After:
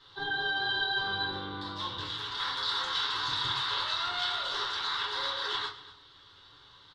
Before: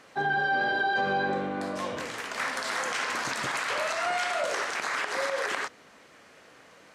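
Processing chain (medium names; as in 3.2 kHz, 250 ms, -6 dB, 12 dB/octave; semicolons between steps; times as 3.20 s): FFT filter 110 Hz 0 dB, 210 Hz -23 dB, 420 Hz -11 dB, 600 Hz -25 dB, 940 Hz -7 dB, 1.4 kHz -8 dB, 2.4 kHz -18 dB, 3.6 kHz +11 dB, 6.6 kHz -18 dB, 10 kHz -22 dB; delay 236 ms -18 dB; reverberation RT60 0.30 s, pre-delay 3 ms, DRR -6.5 dB; trim -4 dB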